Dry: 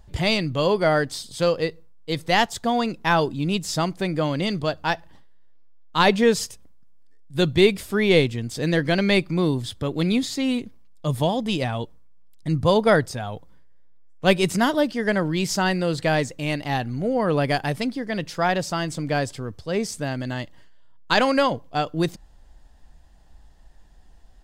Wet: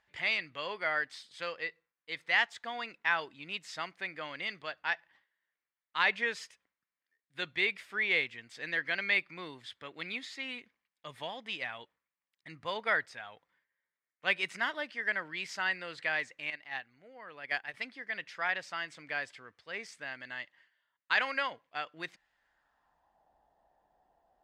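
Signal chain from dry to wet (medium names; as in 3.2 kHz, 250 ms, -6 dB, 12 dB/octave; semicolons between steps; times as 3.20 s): band-pass sweep 2 kHz -> 730 Hz, 22.31–23.28 s; 16.50–17.74 s: gate -32 dBFS, range -10 dB; trim -1.5 dB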